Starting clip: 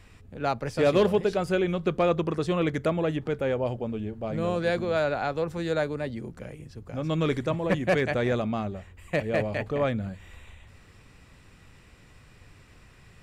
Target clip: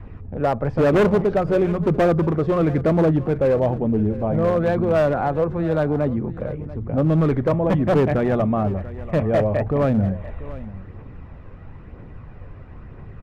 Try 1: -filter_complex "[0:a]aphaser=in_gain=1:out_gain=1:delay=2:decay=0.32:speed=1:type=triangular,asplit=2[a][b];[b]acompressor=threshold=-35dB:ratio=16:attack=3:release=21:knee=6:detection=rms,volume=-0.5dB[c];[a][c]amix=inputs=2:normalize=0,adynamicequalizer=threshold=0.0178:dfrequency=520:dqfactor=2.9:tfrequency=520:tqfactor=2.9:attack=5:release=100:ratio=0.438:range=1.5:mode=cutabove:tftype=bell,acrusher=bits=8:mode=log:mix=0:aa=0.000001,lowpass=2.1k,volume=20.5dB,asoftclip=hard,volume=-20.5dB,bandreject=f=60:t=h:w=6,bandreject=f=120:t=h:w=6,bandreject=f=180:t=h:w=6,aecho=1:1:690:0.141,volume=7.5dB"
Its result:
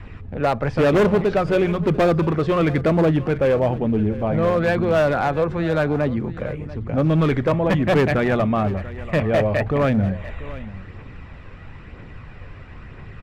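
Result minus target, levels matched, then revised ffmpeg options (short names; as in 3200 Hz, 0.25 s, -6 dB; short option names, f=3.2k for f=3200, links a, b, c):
2000 Hz band +5.5 dB
-filter_complex "[0:a]aphaser=in_gain=1:out_gain=1:delay=2:decay=0.32:speed=1:type=triangular,asplit=2[a][b];[b]acompressor=threshold=-35dB:ratio=16:attack=3:release=21:knee=6:detection=rms,volume=-0.5dB[c];[a][c]amix=inputs=2:normalize=0,adynamicequalizer=threshold=0.0178:dfrequency=520:dqfactor=2.9:tfrequency=520:tqfactor=2.9:attack=5:release=100:ratio=0.438:range=1.5:mode=cutabove:tftype=bell,acrusher=bits=8:mode=log:mix=0:aa=0.000001,lowpass=1k,volume=20.5dB,asoftclip=hard,volume=-20.5dB,bandreject=f=60:t=h:w=6,bandreject=f=120:t=h:w=6,bandreject=f=180:t=h:w=6,aecho=1:1:690:0.141,volume=7.5dB"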